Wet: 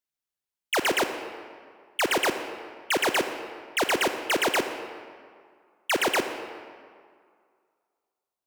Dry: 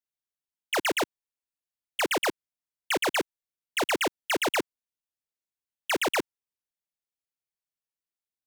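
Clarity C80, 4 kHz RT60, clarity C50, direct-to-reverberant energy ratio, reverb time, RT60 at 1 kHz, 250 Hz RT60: 9.0 dB, 1.3 s, 8.0 dB, 7.5 dB, 2.1 s, 2.2 s, 2.0 s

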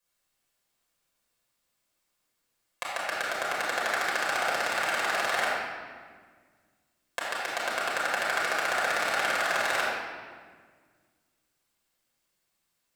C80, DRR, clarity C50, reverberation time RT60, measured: 0.0 dB, −7.0 dB, −2.0 dB, 1.7 s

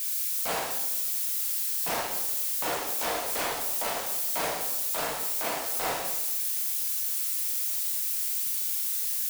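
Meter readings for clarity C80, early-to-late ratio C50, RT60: 6.5 dB, 3.5 dB, 1.0 s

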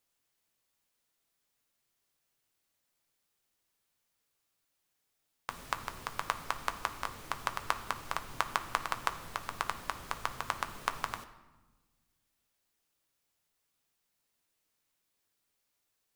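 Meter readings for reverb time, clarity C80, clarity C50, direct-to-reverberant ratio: 1.2 s, 14.5 dB, 13.0 dB, 7.5 dB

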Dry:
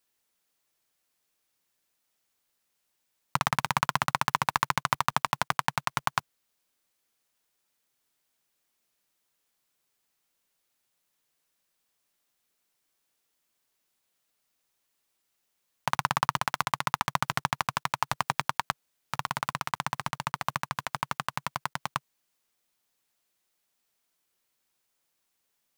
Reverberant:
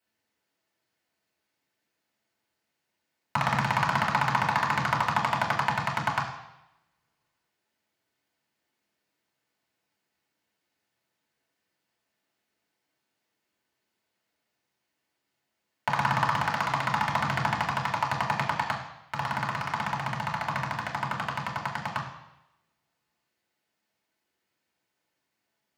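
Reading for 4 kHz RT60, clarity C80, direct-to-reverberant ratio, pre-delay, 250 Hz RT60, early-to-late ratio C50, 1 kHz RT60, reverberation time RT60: 0.90 s, 8.5 dB, −3.0 dB, 3 ms, 0.85 s, 6.0 dB, 0.90 s, 0.90 s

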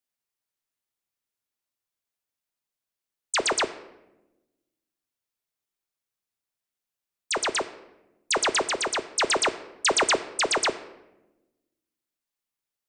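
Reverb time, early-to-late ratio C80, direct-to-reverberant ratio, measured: 1.0 s, 16.0 dB, 10.0 dB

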